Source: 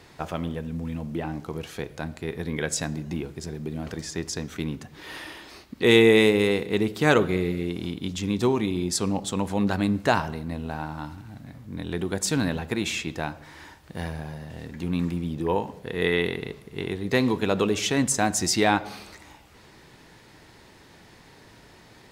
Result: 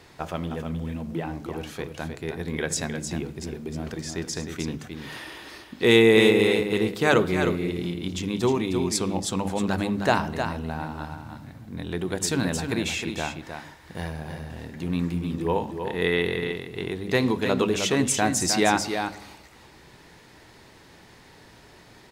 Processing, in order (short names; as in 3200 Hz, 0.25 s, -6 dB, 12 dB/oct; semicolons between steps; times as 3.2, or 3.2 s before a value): notches 50/100/150/200/250/300 Hz; echo 0.31 s -7 dB